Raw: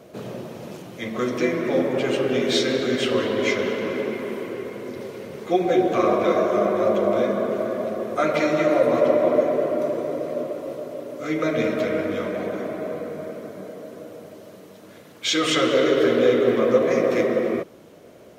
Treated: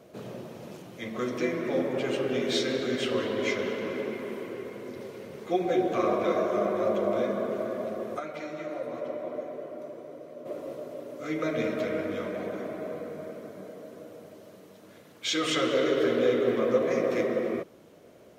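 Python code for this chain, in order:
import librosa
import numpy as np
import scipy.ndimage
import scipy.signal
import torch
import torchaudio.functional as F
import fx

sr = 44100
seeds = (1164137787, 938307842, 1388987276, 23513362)

y = fx.comb_fb(x, sr, f0_hz=750.0, decay_s=0.44, harmonics='all', damping=0.0, mix_pct=70, at=(8.18, 10.45), fade=0.02)
y = F.gain(torch.from_numpy(y), -6.5).numpy()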